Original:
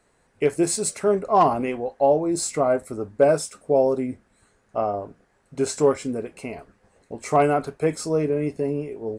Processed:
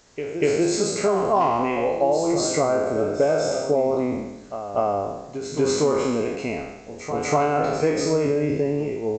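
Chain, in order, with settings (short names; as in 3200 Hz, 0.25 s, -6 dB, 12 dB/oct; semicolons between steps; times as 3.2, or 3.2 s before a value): spectral trails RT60 0.95 s; compressor 5:1, threshold -21 dBFS, peak gain reduction 10 dB; on a send: reverse echo 0.241 s -9.5 dB; on the sum: added noise violet -49 dBFS; downsampling 16000 Hz; gain +3.5 dB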